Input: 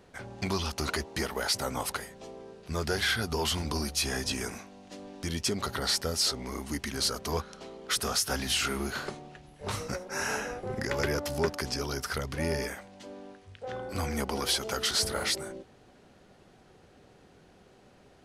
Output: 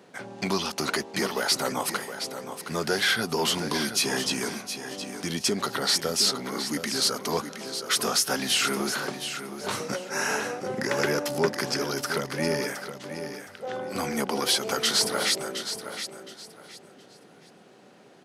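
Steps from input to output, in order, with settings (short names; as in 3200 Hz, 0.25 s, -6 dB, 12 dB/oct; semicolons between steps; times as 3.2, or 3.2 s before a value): HPF 150 Hz 24 dB/oct; feedback echo 0.717 s, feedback 25%, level -9.5 dB; gain +4.5 dB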